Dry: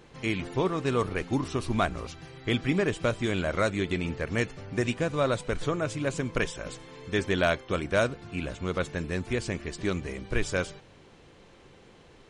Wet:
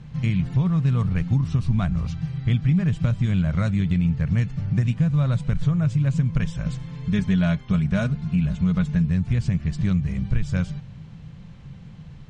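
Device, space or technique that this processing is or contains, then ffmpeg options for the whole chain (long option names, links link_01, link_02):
jukebox: -filter_complex "[0:a]asettb=1/sr,asplit=3[link_01][link_02][link_03];[link_01]atrim=end=7.044[link_04];[link_02]atrim=start=7.04:end=9.1,asetpts=PTS-STARTPTS,afade=type=in:duration=0.004:curve=qsin,afade=type=out:start_time=2.056:duration=0.004:curve=qsin,aecho=1:1:4.8:0.59,atrim=end_sample=90846[link_05];[link_03]atrim=start=9.096[link_06];[link_04][link_05]acrossfade=duration=0.004:curve1=hsin:curve2=qsin[link_07];[link_07][link_06]acrossfade=duration=0.004:curve1=qsin:curve2=hsin,lowpass=7100,lowshelf=frequency=240:width_type=q:width=3:gain=14,acompressor=threshold=-19dB:ratio=3"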